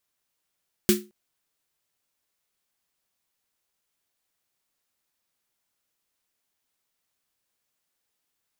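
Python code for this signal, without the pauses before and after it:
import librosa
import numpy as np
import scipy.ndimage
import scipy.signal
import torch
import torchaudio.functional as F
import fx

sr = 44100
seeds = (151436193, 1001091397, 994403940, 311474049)

y = fx.drum_snare(sr, seeds[0], length_s=0.22, hz=210.0, second_hz=360.0, noise_db=-3.5, noise_from_hz=1400.0, decay_s=0.28, noise_decay_s=0.22)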